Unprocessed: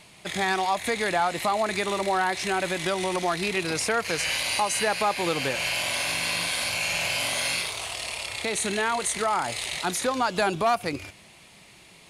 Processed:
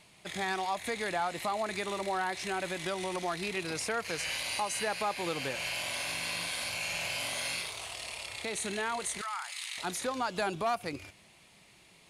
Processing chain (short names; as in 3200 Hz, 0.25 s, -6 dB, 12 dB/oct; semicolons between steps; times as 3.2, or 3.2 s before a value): 9.21–9.78 HPF 1100 Hz 24 dB/oct; gain -8 dB